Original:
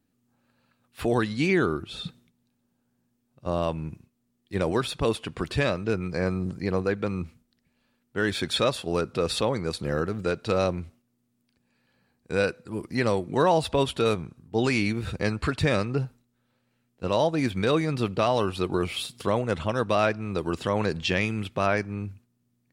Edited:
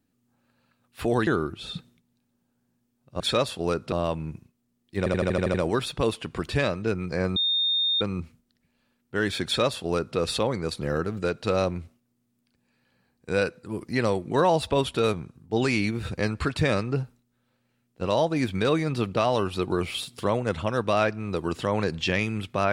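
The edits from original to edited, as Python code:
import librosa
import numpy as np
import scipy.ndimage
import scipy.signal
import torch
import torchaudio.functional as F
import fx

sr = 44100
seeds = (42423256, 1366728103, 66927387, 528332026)

y = fx.edit(x, sr, fx.cut(start_s=1.27, length_s=0.3),
    fx.stutter(start_s=4.56, slice_s=0.08, count=8),
    fx.bleep(start_s=6.38, length_s=0.65, hz=3660.0, db=-21.0),
    fx.duplicate(start_s=8.47, length_s=0.72, to_s=3.5), tone=tone)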